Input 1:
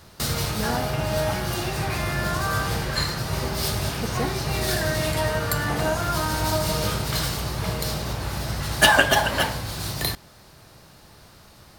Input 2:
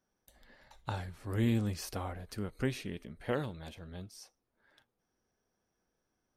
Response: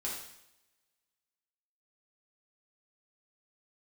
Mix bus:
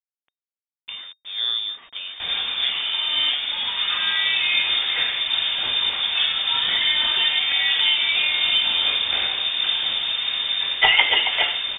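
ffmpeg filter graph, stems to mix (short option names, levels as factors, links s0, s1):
-filter_complex "[0:a]dynaudnorm=f=160:g=3:m=1.41,adelay=2000,volume=0.794,asplit=2[s0][s1];[s1]volume=0.501[s2];[1:a]dynaudnorm=f=770:g=3:m=1.68,acrusher=bits=6:mix=0:aa=0.000001,volume=1.06,asplit=2[s3][s4];[s4]apad=whole_len=607989[s5];[s0][s5]sidechaincompress=threshold=0.0178:ratio=8:attack=35:release=614[s6];[2:a]atrim=start_sample=2205[s7];[s2][s7]afir=irnorm=-1:irlink=0[s8];[s6][s3][s8]amix=inputs=3:normalize=0,acompressor=mode=upward:threshold=0.00282:ratio=2.5,lowpass=f=3100:t=q:w=0.5098,lowpass=f=3100:t=q:w=0.6013,lowpass=f=3100:t=q:w=0.9,lowpass=f=3100:t=q:w=2.563,afreqshift=-3700"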